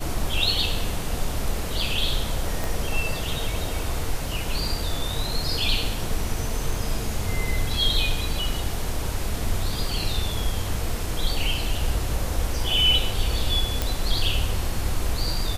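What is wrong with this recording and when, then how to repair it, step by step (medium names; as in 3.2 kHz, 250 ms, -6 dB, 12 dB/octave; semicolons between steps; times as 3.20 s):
2.64 s: pop
13.82 s: pop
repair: de-click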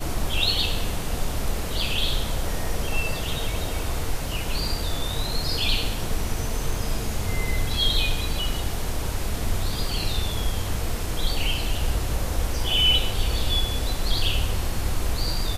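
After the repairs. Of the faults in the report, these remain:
2.64 s: pop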